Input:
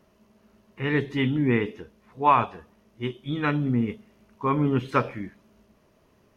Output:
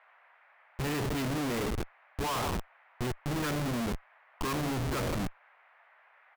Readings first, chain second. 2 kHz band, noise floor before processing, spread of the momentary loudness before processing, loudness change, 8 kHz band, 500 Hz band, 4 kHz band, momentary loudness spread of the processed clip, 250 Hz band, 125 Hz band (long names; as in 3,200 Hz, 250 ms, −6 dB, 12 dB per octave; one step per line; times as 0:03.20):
−6.5 dB, −63 dBFS, 13 LU, −8.0 dB, can't be measured, −6.5 dB, +0.5 dB, 8 LU, −8.0 dB, −6.0 dB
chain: far-end echo of a speakerphone 160 ms, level −19 dB
comparator with hysteresis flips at −35.5 dBFS
noise in a band 620–2,200 Hz −58 dBFS
level −4 dB